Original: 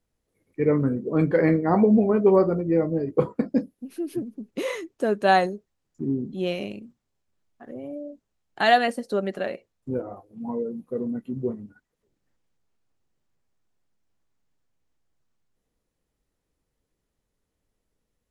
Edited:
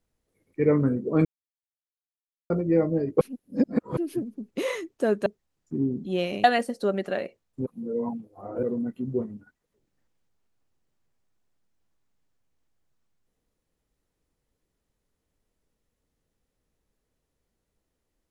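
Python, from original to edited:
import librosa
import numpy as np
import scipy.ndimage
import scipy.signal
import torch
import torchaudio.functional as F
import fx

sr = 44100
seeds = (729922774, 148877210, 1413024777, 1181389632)

y = fx.edit(x, sr, fx.silence(start_s=1.25, length_s=1.25),
    fx.reverse_span(start_s=3.21, length_s=0.76),
    fx.cut(start_s=5.26, length_s=0.28),
    fx.cut(start_s=6.72, length_s=2.01),
    fx.reverse_span(start_s=9.95, length_s=0.97), tone=tone)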